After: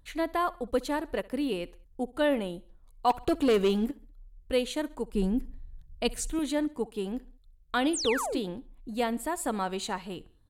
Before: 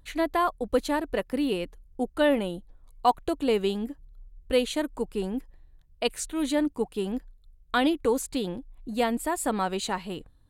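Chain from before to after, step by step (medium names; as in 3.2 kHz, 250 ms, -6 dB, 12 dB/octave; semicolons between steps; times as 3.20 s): 3.10–3.91 s: waveshaping leveller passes 2; 5.13–6.39 s: tone controls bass +13 dB, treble +3 dB; 7.93–8.40 s: painted sound fall 250–9900 Hz -29 dBFS; feedback delay 66 ms, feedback 46%, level -22 dB; trim -3.5 dB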